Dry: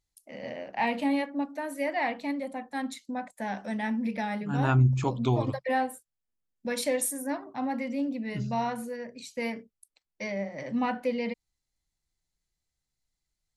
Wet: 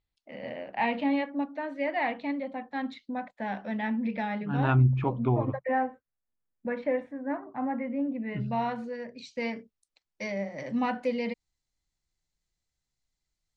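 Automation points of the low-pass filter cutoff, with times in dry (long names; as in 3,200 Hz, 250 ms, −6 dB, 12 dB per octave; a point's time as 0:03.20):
low-pass filter 24 dB per octave
0:04.77 3,800 Hz
0:05.22 2,000 Hz
0:08.09 2,000 Hz
0:08.80 4,500 Hz
0:10.52 8,500 Hz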